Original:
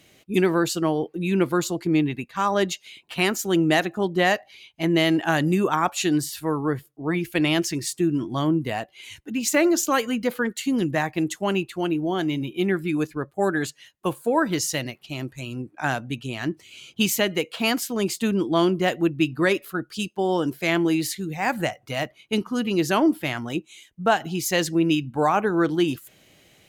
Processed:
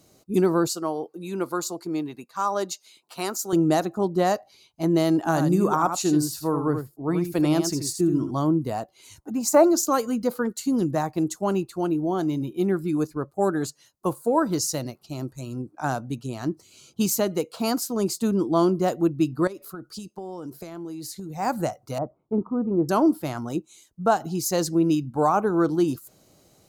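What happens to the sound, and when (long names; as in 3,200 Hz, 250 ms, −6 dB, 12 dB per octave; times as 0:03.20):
0:00.67–0:03.53: high-pass filter 640 Hz 6 dB per octave
0:05.18–0:08.31: single-tap delay 80 ms −7.5 dB
0:09.18–0:09.64: drawn EQ curve 460 Hz 0 dB, 740 Hz +13 dB, 3,300 Hz −6 dB, 7,400 Hz 0 dB
0:19.47–0:21.37: downward compressor 16 to 1, threshold −31 dBFS
0:21.98–0:22.89: low-pass filter 1,100 Hz 24 dB per octave
whole clip: flat-topped bell 2,400 Hz −14 dB 1.3 octaves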